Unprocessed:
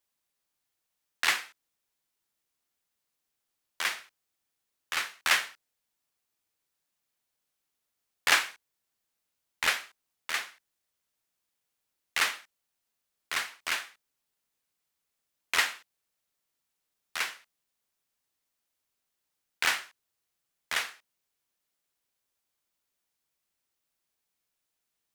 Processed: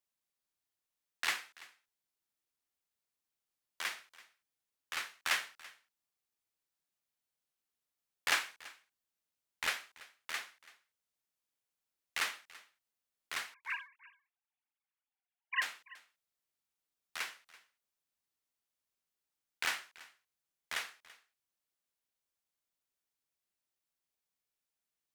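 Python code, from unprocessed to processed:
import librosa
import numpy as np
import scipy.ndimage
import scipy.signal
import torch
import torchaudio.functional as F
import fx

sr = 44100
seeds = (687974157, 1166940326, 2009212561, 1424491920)

y = fx.sine_speech(x, sr, at=(13.54, 15.62))
y = y + 10.0 ** (-20.5 / 20.0) * np.pad(y, (int(334 * sr / 1000.0), 0))[:len(y)]
y = F.gain(torch.from_numpy(y), -8.0).numpy()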